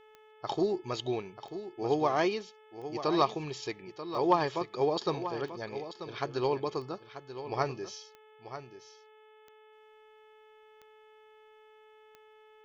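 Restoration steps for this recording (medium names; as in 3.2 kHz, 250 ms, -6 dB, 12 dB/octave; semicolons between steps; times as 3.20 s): de-click; de-hum 431.8 Hz, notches 8; inverse comb 937 ms -11.5 dB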